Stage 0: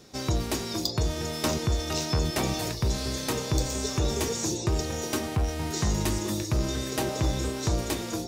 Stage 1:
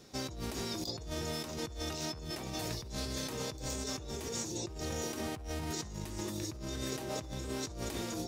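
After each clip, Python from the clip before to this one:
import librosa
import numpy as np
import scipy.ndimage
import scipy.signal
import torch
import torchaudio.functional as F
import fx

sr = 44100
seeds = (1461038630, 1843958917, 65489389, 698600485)

y = fx.over_compress(x, sr, threshold_db=-32.0, ratio=-1.0)
y = y * librosa.db_to_amplitude(-7.5)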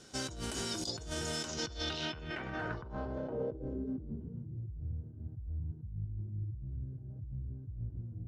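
y = fx.small_body(x, sr, hz=(1500.0, 3000.0), ring_ms=35, db=14)
y = fx.filter_sweep_lowpass(y, sr, from_hz=8800.0, to_hz=110.0, start_s=1.29, end_s=4.63, q=2.5)
y = y * librosa.db_to_amplitude(-1.0)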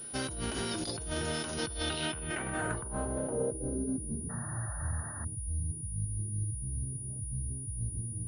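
y = fx.spec_paint(x, sr, seeds[0], shape='noise', start_s=4.29, length_s=0.96, low_hz=540.0, high_hz=1900.0, level_db=-52.0)
y = fx.pwm(y, sr, carrier_hz=9700.0)
y = y * librosa.db_to_amplitude(4.0)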